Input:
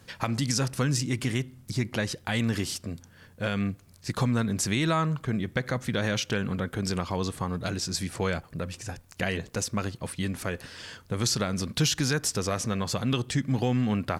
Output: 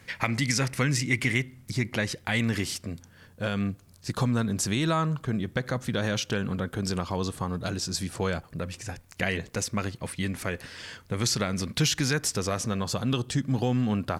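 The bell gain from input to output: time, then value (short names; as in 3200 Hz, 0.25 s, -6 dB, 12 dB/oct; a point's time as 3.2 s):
bell 2100 Hz 0.46 oct
1.26 s +13.5 dB
1.75 s +6 dB
2.75 s +6 dB
3.42 s -4 dB
8.32 s -4 dB
8.85 s +4.5 dB
12.18 s +4.5 dB
12.89 s -6 dB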